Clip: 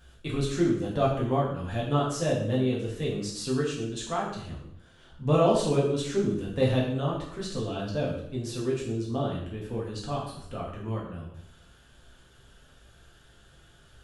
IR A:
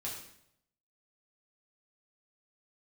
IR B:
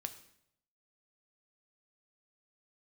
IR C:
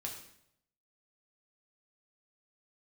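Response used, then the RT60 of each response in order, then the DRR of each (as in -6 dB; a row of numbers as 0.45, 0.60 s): A; 0.75, 0.75, 0.75 s; -5.0, 8.0, -0.5 dB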